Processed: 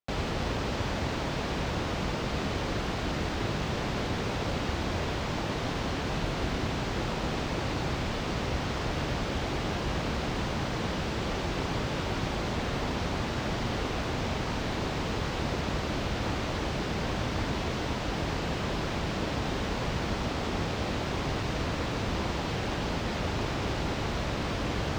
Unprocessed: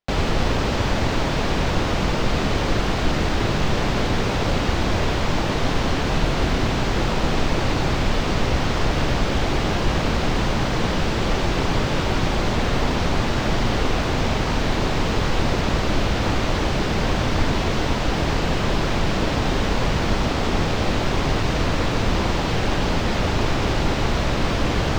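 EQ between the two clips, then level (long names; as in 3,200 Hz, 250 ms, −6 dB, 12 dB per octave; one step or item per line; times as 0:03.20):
high-pass filter 46 Hz
−9.0 dB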